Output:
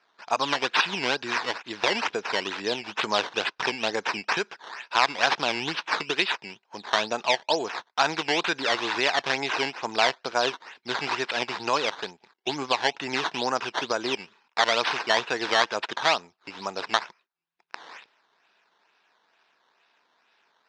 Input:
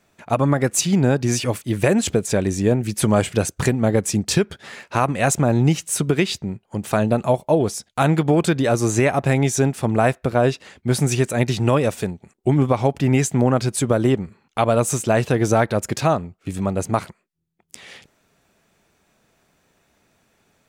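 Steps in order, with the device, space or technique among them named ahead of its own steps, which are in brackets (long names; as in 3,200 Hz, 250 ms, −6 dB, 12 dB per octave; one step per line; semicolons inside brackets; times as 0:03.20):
circuit-bent sampling toy (sample-and-hold swept by an LFO 12×, swing 100% 2.2 Hz; loudspeaker in its box 550–5,700 Hz, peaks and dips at 570 Hz −5 dB, 960 Hz +6 dB, 1,600 Hz +5 dB, 2,600 Hz +6 dB, 3,700 Hz +6 dB, 5,200 Hz +5 dB)
level −3.5 dB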